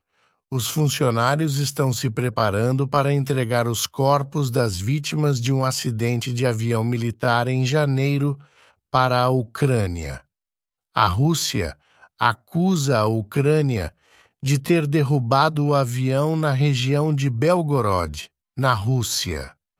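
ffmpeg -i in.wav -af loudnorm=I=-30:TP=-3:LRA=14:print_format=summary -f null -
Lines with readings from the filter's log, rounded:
Input Integrated:    -21.2 LUFS
Input True Peak:      -2.5 dBTP
Input LRA:             1.9 LU
Input Threshold:     -31.6 LUFS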